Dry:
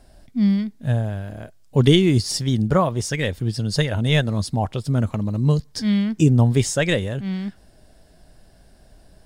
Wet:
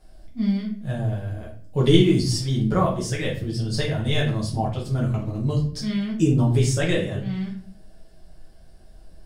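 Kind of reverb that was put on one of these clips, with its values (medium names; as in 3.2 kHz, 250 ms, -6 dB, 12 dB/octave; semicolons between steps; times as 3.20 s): simulated room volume 47 m³, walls mixed, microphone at 1 m; trim -8.5 dB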